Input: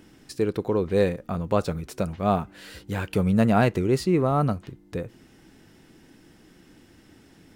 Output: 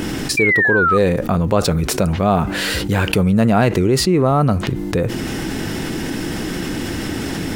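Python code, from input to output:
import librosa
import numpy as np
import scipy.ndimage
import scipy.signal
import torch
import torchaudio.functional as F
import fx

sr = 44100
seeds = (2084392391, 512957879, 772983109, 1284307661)

y = fx.spec_paint(x, sr, seeds[0], shape='fall', start_s=0.37, length_s=0.61, low_hz=1200.0, high_hz=2400.0, level_db=-23.0)
y = fx.env_flatten(y, sr, amount_pct=70)
y = y * librosa.db_to_amplitude(4.0)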